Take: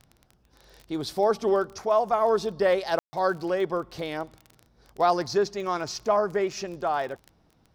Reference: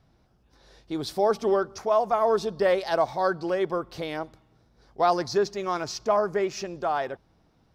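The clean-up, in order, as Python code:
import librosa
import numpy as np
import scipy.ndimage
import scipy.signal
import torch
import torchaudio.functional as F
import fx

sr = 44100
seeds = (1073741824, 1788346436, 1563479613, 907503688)

y = fx.fix_declick_ar(x, sr, threshold=6.5)
y = fx.fix_ambience(y, sr, seeds[0], print_start_s=0.01, print_end_s=0.51, start_s=2.99, end_s=3.13)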